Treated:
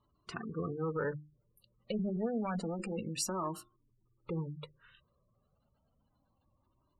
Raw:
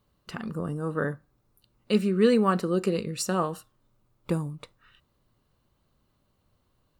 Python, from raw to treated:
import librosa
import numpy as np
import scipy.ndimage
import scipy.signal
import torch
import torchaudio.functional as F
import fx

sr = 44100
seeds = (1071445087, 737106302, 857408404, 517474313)

p1 = fx.diode_clip(x, sr, knee_db=-21.0)
p2 = fx.hum_notches(p1, sr, base_hz=50, count=8)
p3 = fx.spec_gate(p2, sr, threshold_db=-20, keep='strong')
p4 = fx.low_shelf(p3, sr, hz=74.0, db=-8.5)
p5 = fx.over_compress(p4, sr, threshold_db=-31.0, ratio=-0.5)
p6 = p4 + (p5 * librosa.db_to_amplitude(2.0))
p7 = fx.comb_cascade(p6, sr, direction='rising', hz=0.29)
y = p7 * librosa.db_to_amplitude(-6.5)